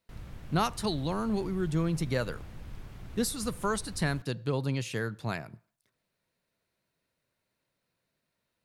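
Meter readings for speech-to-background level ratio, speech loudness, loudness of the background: 15.5 dB, -32.0 LUFS, -47.5 LUFS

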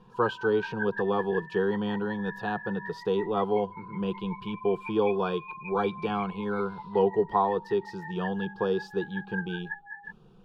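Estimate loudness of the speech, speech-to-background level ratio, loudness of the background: -29.5 LUFS, 11.0 dB, -40.5 LUFS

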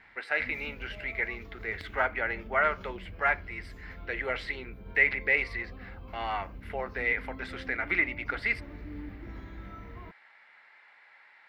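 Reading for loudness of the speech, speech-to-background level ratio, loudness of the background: -30.5 LUFS, 16.0 dB, -46.5 LUFS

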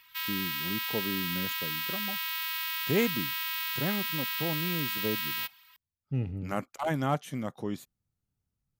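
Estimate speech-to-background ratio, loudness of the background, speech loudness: -3.5 dB, -31.0 LUFS, -34.5 LUFS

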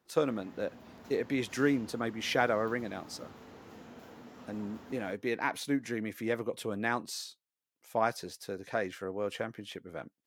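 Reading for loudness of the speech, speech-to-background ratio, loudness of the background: -34.0 LUFS, 18.0 dB, -52.0 LUFS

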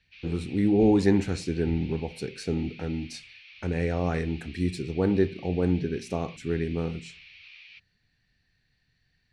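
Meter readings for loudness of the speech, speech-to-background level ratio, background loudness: -27.5 LUFS, 20.0 dB, -47.5 LUFS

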